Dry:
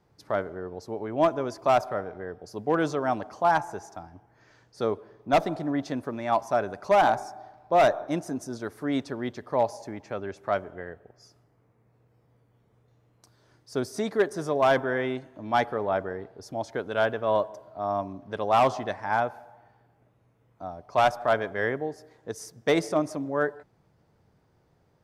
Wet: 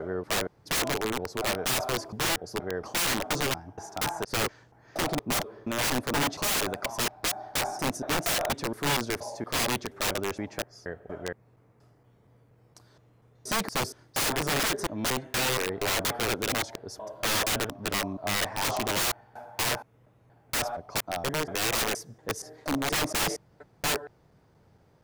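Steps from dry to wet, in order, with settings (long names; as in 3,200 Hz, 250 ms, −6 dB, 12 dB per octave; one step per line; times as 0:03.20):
slices reordered back to front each 236 ms, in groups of 3
wrap-around overflow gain 25.5 dB
level +4 dB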